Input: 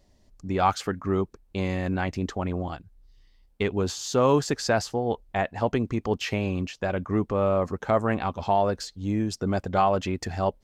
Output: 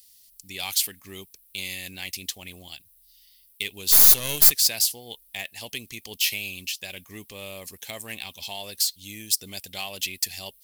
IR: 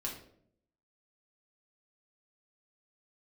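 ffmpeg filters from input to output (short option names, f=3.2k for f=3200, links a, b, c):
-filter_complex "[0:a]aexciter=amount=11.8:drive=9.9:freq=2.2k,asplit=3[a][b][c];[a]afade=t=out:st=3.91:d=0.02[d];[b]aeval=exprs='2.37*(cos(1*acos(clip(val(0)/2.37,-1,1)))-cos(1*PI/2))+0.473*(cos(8*acos(clip(val(0)/2.37,-1,1)))-cos(8*PI/2))':c=same,afade=t=in:st=3.91:d=0.02,afade=t=out:st=4.5:d=0.02[e];[c]afade=t=in:st=4.5:d=0.02[f];[d][e][f]amix=inputs=3:normalize=0,aexciter=amount=7.9:drive=4.8:freq=9.3k,volume=-18dB"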